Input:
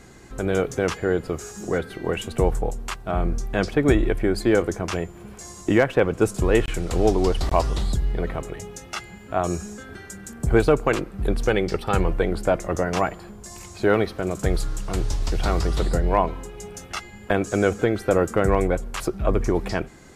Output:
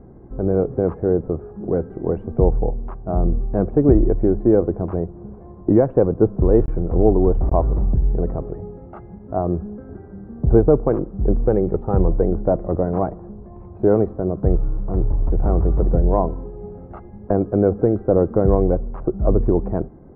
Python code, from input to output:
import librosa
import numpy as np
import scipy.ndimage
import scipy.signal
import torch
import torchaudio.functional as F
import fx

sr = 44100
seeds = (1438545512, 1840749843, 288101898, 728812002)

y = scipy.signal.sosfilt(scipy.signal.bessel(4, 580.0, 'lowpass', norm='mag', fs=sr, output='sos'), x)
y = y * librosa.db_to_amplitude(5.5)